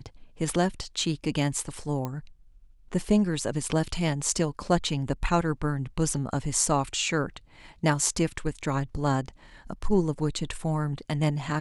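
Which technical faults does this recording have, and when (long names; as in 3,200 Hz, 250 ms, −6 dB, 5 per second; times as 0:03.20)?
0:02.05: click −18 dBFS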